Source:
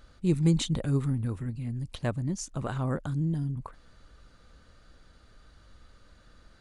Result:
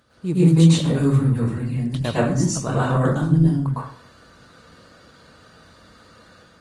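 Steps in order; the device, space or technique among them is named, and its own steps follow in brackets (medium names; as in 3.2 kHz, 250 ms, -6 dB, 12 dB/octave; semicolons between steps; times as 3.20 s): far-field microphone of a smart speaker (reverberation RT60 0.55 s, pre-delay 101 ms, DRR -8.5 dB; high-pass 91 Hz 24 dB/octave; level rider gain up to 4 dB; Opus 24 kbps 48 kHz)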